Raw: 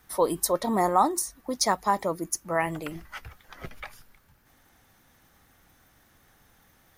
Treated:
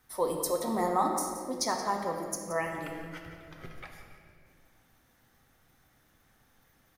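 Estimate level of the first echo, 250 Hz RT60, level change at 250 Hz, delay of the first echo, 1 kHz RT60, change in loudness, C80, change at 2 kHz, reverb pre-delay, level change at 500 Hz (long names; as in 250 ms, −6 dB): −13.5 dB, 2.8 s, −4.5 dB, 174 ms, 1.7 s, −5.5 dB, 4.0 dB, −4.5 dB, 8 ms, −4.0 dB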